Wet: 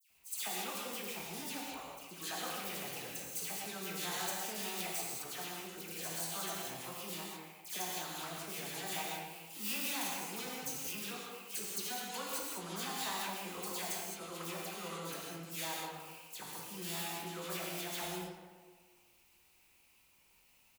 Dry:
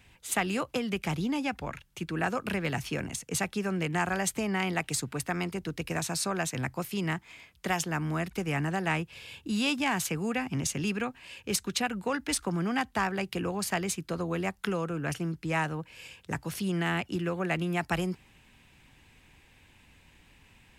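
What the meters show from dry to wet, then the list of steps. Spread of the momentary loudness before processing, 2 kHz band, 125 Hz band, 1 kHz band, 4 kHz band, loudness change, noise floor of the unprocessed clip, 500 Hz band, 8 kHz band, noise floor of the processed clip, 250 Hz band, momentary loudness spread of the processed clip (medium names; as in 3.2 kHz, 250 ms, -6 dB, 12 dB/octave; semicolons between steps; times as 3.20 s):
7 LU, -11.0 dB, -18.0 dB, -9.0 dB, -4.0 dB, -8.5 dB, -61 dBFS, -12.0 dB, -4.5 dB, -68 dBFS, -16.0 dB, 7 LU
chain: median filter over 25 samples; pre-emphasis filter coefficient 0.97; spectral gate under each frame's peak -30 dB strong; treble shelf 7.7 kHz +4.5 dB; hum notches 50/100/150 Hz; doubling 19 ms -13 dB; phase dispersion lows, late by 104 ms, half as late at 2.2 kHz; on a send: tape echo 128 ms, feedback 62%, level -7 dB, low-pass 2.4 kHz; on the sum: gated-style reverb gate 240 ms flat, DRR -2 dB; trim +6 dB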